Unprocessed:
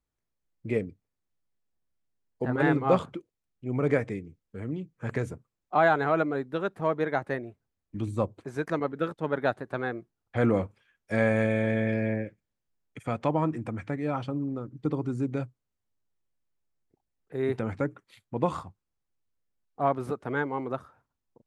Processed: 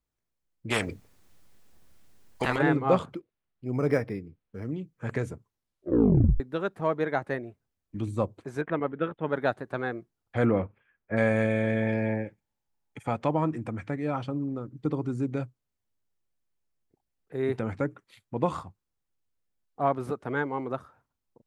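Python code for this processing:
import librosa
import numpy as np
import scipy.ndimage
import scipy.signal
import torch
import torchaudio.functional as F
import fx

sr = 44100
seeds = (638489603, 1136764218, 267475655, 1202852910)

y = fx.spectral_comp(x, sr, ratio=4.0, at=(0.7, 2.57), fade=0.02)
y = fx.resample_linear(y, sr, factor=6, at=(3.14, 4.71))
y = fx.steep_lowpass(y, sr, hz=3500.0, slope=72, at=(8.61, 9.29))
y = fx.lowpass(y, sr, hz=fx.line((10.44, 3400.0), (11.16, 1900.0)), slope=24, at=(10.44, 11.16), fade=0.02)
y = fx.peak_eq(y, sr, hz=850.0, db=13.5, octaves=0.22, at=(11.82, 13.16))
y = fx.edit(y, sr, fx.tape_stop(start_s=5.32, length_s=1.08), tone=tone)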